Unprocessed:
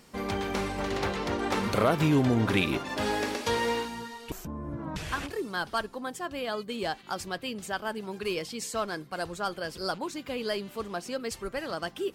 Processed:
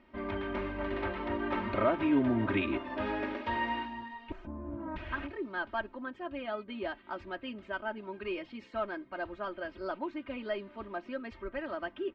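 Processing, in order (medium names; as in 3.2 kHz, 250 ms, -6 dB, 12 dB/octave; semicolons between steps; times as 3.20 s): low-pass 2.7 kHz 24 dB/octave; comb 3.2 ms, depth 90%; trim -6.5 dB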